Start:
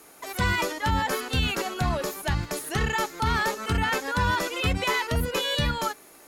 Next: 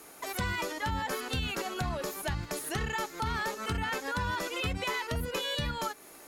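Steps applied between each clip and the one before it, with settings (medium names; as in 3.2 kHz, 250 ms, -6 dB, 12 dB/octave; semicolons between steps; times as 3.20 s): compression 2.5:1, threshold -33 dBFS, peak gain reduction 9 dB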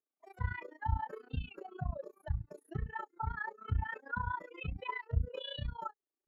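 AM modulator 29 Hz, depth 90%; spectral contrast expander 2.5:1; trim +1.5 dB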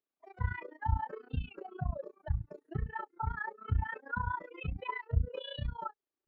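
distance through air 190 m; trim +2.5 dB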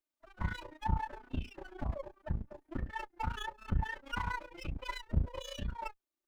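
comb filter that takes the minimum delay 3.3 ms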